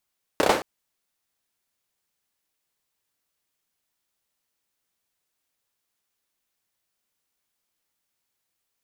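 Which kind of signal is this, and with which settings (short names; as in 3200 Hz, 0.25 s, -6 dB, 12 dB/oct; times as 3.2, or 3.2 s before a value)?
hand clap length 0.22 s, apart 31 ms, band 520 Hz, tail 0.39 s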